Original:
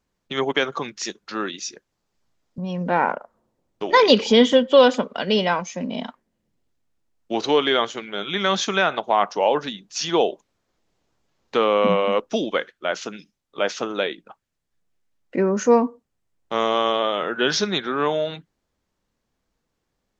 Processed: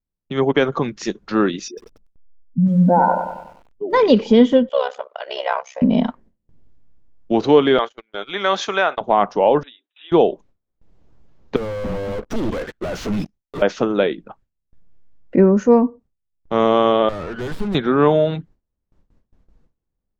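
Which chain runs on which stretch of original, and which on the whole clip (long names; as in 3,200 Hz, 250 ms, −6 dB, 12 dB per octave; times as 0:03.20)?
0:01.68–0:03.93: expanding power law on the bin magnitudes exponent 2.4 + parametric band 71 Hz −3.5 dB 1.1 octaves + feedback echo at a low word length 95 ms, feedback 55%, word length 8 bits, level −7 dB
0:04.69–0:05.82: Chebyshev high-pass filter 580 Hz, order 4 + amplitude modulation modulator 66 Hz, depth 85%
0:07.78–0:09.01: high-pass filter 580 Hz + noise gate −33 dBFS, range −30 dB
0:09.63–0:10.12: linear-phase brick-wall band-pass 240–3,900 Hz + first difference
0:11.56–0:13.62: downward compressor 3 to 1, threshold −38 dBFS + leveller curve on the samples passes 5 + hard clipping −33 dBFS
0:17.09–0:17.75: tube saturation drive 32 dB, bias 0.4 + windowed peak hold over 5 samples
whole clip: spectral tilt −3.5 dB per octave; automatic gain control gain up to 8 dB; noise gate with hold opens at −45 dBFS; level −1 dB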